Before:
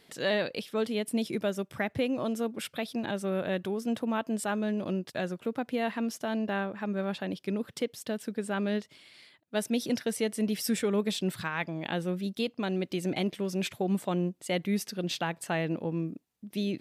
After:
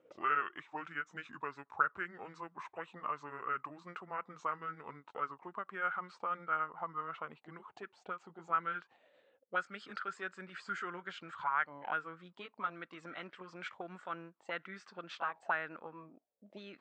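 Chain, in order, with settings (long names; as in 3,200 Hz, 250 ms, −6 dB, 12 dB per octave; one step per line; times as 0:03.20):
pitch glide at a constant tempo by −6.5 semitones ending unshifted
elliptic low-pass filter 8,000 Hz
envelope filter 490–1,400 Hz, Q 7.5, up, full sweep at −29 dBFS
level +11.5 dB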